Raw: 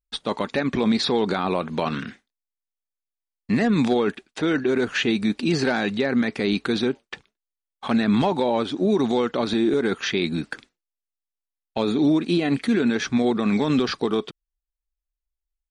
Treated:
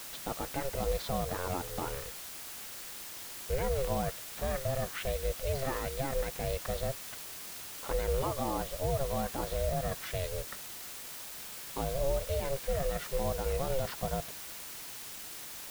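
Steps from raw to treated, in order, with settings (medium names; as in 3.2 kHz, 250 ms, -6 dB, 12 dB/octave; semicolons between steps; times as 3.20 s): treble shelf 2.2 kHz -10.5 dB; ring modulator 270 Hz; word length cut 6-bit, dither triangular; trim -8 dB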